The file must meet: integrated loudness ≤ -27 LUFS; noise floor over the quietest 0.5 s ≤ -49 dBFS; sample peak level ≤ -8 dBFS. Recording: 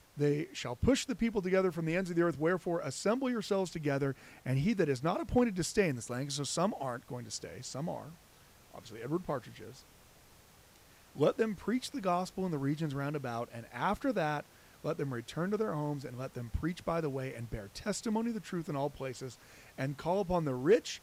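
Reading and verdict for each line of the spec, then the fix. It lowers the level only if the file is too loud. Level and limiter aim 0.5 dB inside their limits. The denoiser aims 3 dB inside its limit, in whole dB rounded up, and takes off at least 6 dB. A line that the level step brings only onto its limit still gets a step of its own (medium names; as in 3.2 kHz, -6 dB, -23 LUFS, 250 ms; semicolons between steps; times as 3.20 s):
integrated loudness -34.5 LUFS: pass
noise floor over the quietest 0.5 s -60 dBFS: pass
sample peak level -17.5 dBFS: pass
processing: none needed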